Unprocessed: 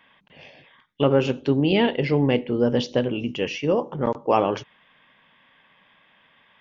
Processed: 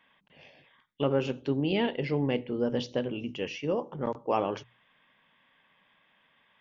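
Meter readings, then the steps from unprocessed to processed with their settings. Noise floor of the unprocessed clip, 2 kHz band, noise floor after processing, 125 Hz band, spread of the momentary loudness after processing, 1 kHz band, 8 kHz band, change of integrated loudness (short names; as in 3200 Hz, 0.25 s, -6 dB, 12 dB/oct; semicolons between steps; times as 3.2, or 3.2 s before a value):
-60 dBFS, -8.0 dB, -68 dBFS, -8.5 dB, 7 LU, -8.0 dB, n/a, -8.0 dB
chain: notches 60/120 Hz; gain -8 dB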